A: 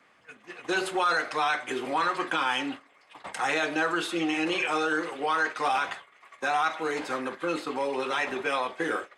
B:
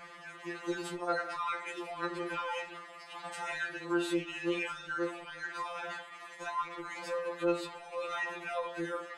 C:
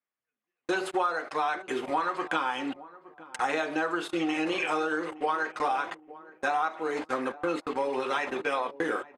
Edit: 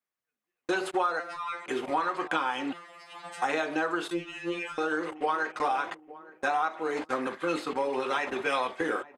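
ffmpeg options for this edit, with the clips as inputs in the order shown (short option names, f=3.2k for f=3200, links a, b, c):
-filter_complex "[1:a]asplit=3[a][b][c];[0:a]asplit=2[d][e];[2:a]asplit=6[f][g][h][i][j][k];[f]atrim=end=1.202[l];[a]atrim=start=1.198:end=1.662[m];[g]atrim=start=1.658:end=2.732[n];[b]atrim=start=2.728:end=3.422[o];[h]atrim=start=3.418:end=4.112[p];[c]atrim=start=4.108:end=4.782[q];[i]atrim=start=4.778:end=7.272[r];[d]atrim=start=7.268:end=7.732[s];[j]atrim=start=7.728:end=8.332[t];[e]atrim=start=8.328:end=8.812[u];[k]atrim=start=8.808[v];[l][m]acrossfade=d=0.004:c1=hsin:c2=hsin[w];[w][n]acrossfade=d=0.004:c1=hsin:c2=hsin[x];[x][o]acrossfade=d=0.004:c1=hsin:c2=hsin[y];[y][p]acrossfade=d=0.004:c1=hsin:c2=hsin[z];[z][q]acrossfade=d=0.004:c1=hsin:c2=hsin[aa];[aa][r]acrossfade=d=0.004:c1=hsin:c2=hsin[ab];[ab][s]acrossfade=d=0.004:c1=hsin:c2=hsin[ac];[ac][t]acrossfade=d=0.004:c1=hsin:c2=hsin[ad];[ad][u]acrossfade=d=0.004:c1=hsin:c2=hsin[ae];[ae][v]acrossfade=d=0.004:c1=hsin:c2=hsin"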